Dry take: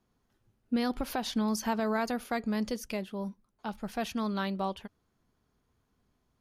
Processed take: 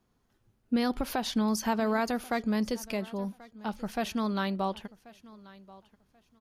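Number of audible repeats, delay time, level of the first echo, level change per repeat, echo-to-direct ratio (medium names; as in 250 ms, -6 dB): 2, 1085 ms, -21.0 dB, -13.0 dB, -21.0 dB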